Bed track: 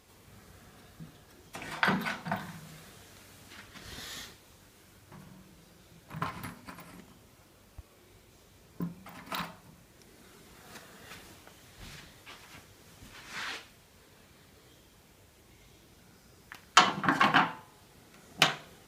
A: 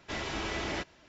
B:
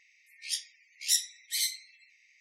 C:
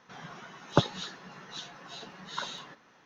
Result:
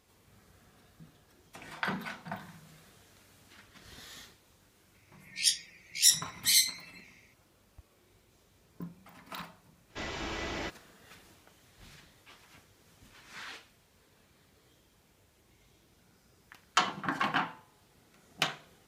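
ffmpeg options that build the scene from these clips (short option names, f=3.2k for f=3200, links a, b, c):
-filter_complex "[0:a]volume=-6.5dB[a];[2:a]dynaudnorm=f=100:g=7:m=13dB,atrim=end=2.4,asetpts=PTS-STARTPTS,volume=-5.5dB,afade=t=in:d=0.004:c=hsin,afade=t=out:st=2.396:d=0.004:c=hsin,adelay=4940[b];[1:a]atrim=end=1.08,asetpts=PTS-STARTPTS,volume=-2.5dB,afade=t=in:d=0.05,afade=t=out:st=1.03:d=0.05,adelay=9870[c];[a][b][c]amix=inputs=3:normalize=0"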